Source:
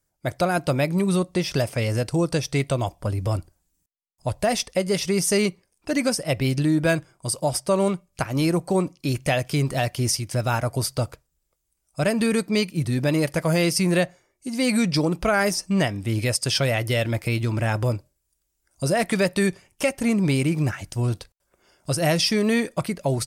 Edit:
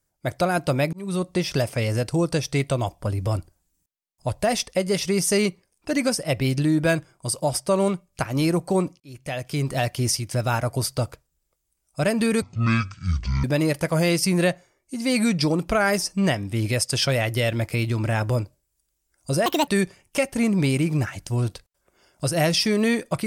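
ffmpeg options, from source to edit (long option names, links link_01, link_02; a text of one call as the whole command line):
ffmpeg -i in.wav -filter_complex "[0:a]asplit=7[link_01][link_02][link_03][link_04][link_05][link_06][link_07];[link_01]atrim=end=0.93,asetpts=PTS-STARTPTS,afade=type=out:start_time=0.926:duration=0.004:curve=hsin[link_08];[link_02]atrim=start=0.93:end=9,asetpts=PTS-STARTPTS,afade=type=in:duration=0.36,afade=type=out:start_time=8.066:duration=0.004:curve=hsin[link_09];[link_03]atrim=start=9:end=12.424,asetpts=PTS-STARTPTS,afade=type=in:duration=0.8[link_10];[link_04]atrim=start=12.42:end=12.97,asetpts=PTS-STARTPTS,asetrate=23814,aresample=44100[link_11];[link_05]atrim=start=12.966:end=18.994[link_12];[link_06]atrim=start=18.99:end=19.33,asetpts=PTS-STARTPTS,asetrate=69678,aresample=44100[link_13];[link_07]atrim=start=19.326[link_14];[link_08][link_09][link_10]concat=n=3:v=0:a=1[link_15];[link_15][link_11]acrossfade=duration=0.004:curve1=hsin:curve2=hsin[link_16];[link_16][link_12]acrossfade=duration=0.004:curve1=hsin:curve2=hsin[link_17];[link_17][link_13]acrossfade=duration=0.004:curve1=hsin:curve2=hsin[link_18];[link_18][link_14]acrossfade=duration=0.004:curve1=hsin:curve2=hsin" out.wav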